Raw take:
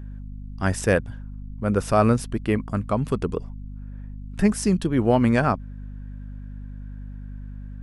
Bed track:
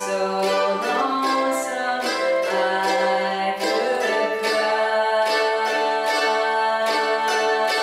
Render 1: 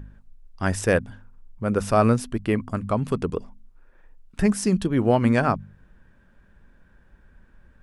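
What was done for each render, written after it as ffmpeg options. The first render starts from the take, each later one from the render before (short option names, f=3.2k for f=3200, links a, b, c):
-af "bandreject=f=50:t=h:w=4,bandreject=f=100:t=h:w=4,bandreject=f=150:t=h:w=4,bandreject=f=200:t=h:w=4,bandreject=f=250:t=h:w=4"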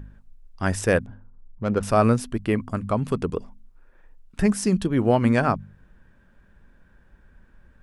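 -filter_complex "[0:a]asettb=1/sr,asplit=3[a][b][c];[a]atrim=end=1.064[d];[b]atrim=start=1.06:end=1.83,asetpts=PTS-STARTPTS,afade=t=in:d=0.004:c=qsin,afade=t=out:st=0.766:d=0.004:c=qsin,adynamicsmooth=sensitivity=2.5:basefreq=1.1k[e];[c]atrim=start=1.826[f];[d][e]acrossfade=d=0.004:c1=hsin:c2=qsin[g];[g][f]acrossfade=d=0.004:c1=qsin:c2=hsin"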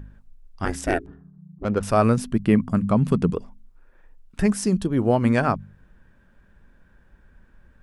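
-filter_complex "[0:a]asettb=1/sr,asplit=3[a][b][c];[a]atrim=end=0.654[d];[b]atrim=start=0.65:end=1.65,asetpts=PTS-STARTPTS,afade=t=in:d=0.004:c=qsin,afade=t=out:st=0.996:d=0.004:c=qsin,aeval=exprs='val(0)*sin(2*PI*170*n/s)':c=same[e];[c]atrim=start=1.646[f];[d][e]acrossfade=d=0.004:c1=hsin:c2=qsin[g];[g][f]acrossfade=d=0.004:c1=qsin:c2=hsin,asettb=1/sr,asplit=3[h][i][j];[h]atrim=end=2.174[k];[i]atrim=start=2.17:end=3.33,asetpts=PTS-STARTPTS,afade=t=in:d=0.004:c=qsin,afade=t=out:st=1.156:d=0.004:c=qsin,equalizer=f=180:t=o:w=0.86:g=11.5[l];[j]atrim=start=3.326[m];[k][l]acrossfade=d=0.004:c1=hsin:c2=qsin[n];[n][m]acrossfade=d=0.004:c1=qsin:c2=hsin,asettb=1/sr,asplit=3[o][p][q];[o]atrim=end=4.664[r];[p]atrim=start=4.66:end=5.25,asetpts=PTS-STARTPTS,afade=t=in:d=0.004:c=qsin,afade=t=out:st=0.586:d=0.004:c=qsin,equalizer=f=2.2k:w=0.89:g=-5.5[s];[q]atrim=start=5.246[t];[r][s]acrossfade=d=0.004:c1=hsin:c2=qsin[u];[u][t]acrossfade=d=0.004:c1=qsin:c2=hsin"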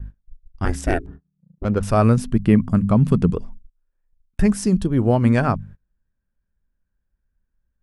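-af "agate=range=-28dB:threshold=-42dB:ratio=16:detection=peak,lowshelf=f=130:g=11"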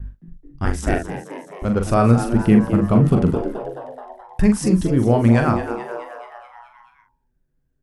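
-filter_complex "[0:a]asplit=2[a][b];[b]adelay=43,volume=-6.5dB[c];[a][c]amix=inputs=2:normalize=0,asplit=2[d][e];[e]asplit=7[f][g][h][i][j][k][l];[f]adelay=214,afreqshift=120,volume=-11.5dB[m];[g]adelay=428,afreqshift=240,volume=-15.9dB[n];[h]adelay=642,afreqshift=360,volume=-20.4dB[o];[i]adelay=856,afreqshift=480,volume=-24.8dB[p];[j]adelay=1070,afreqshift=600,volume=-29.2dB[q];[k]adelay=1284,afreqshift=720,volume=-33.7dB[r];[l]adelay=1498,afreqshift=840,volume=-38.1dB[s];[m][n][o][p][q][r][s]amix=inputs=7:normalize=0[t];[d][t]amix=inputs=2:normalize=0"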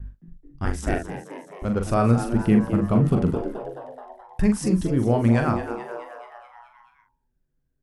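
-af "volume=-4.5dB"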